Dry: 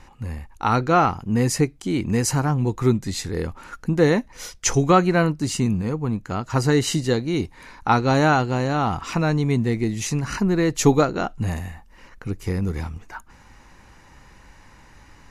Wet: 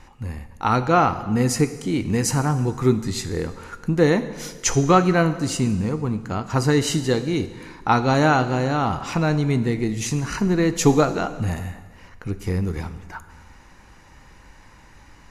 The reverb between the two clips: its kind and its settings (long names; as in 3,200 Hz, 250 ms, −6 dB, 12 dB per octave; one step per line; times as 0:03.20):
dense smooth reverb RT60 1.5 s, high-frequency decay 0.9×, DRR 10.5 dB